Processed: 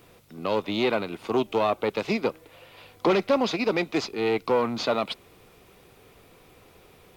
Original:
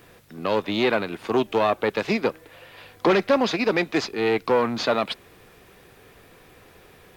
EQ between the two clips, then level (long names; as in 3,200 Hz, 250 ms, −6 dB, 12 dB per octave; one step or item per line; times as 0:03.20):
parametric band 1,700 Hz −9 dB 0.28 octaves
−2.5 dB